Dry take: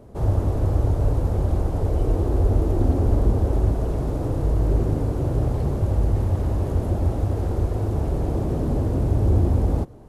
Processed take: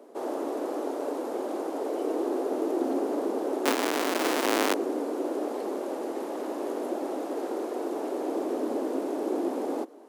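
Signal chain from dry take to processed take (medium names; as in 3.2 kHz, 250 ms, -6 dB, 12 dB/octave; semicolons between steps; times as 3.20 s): 3.65–4.74 s: square wave that keeps the level; steep high-pass 270 Hz 48 dB/octave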